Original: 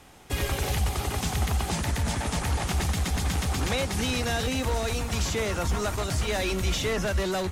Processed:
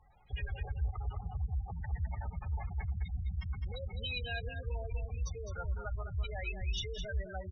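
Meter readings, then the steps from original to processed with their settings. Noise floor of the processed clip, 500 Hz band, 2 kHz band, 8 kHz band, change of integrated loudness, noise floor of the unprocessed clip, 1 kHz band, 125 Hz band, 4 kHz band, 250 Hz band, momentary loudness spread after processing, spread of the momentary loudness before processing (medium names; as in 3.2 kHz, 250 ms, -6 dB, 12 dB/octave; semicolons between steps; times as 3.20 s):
-48 dBFS, -16.5 dB, -12.5 dB, -24.5 dB, -11.5 dB, -34 dBFS, -16.5 dB, -9.0 dB, -13.5 dB, -21.5 dB, 3 LU, 2 LU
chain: one-sided wavefolder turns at -21.5 dBFS; dynamic bell 450 Hz, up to +4 dB, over -43 dBFS, Q 4.7; spectral gate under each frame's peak -10 dB strong; amplifier tone stack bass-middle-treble 10-0-10; delay 208 ms -8 dB; trim +1 dB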